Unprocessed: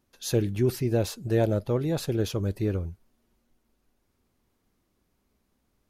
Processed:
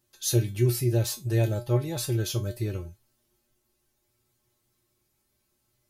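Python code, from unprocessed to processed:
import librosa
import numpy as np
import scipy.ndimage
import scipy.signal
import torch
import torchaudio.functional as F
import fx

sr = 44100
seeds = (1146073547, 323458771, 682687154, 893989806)

y = fx.high_shelf(x, sr, hz=3600.0, db=11.5)
y = fx.comb_fb(y, sr, f0_hz=120.0, decay_s=0.21, harmonics='odd', damping=0.0, mix_pct=90)
y = y * librosa.db_to_amplitude(7.5)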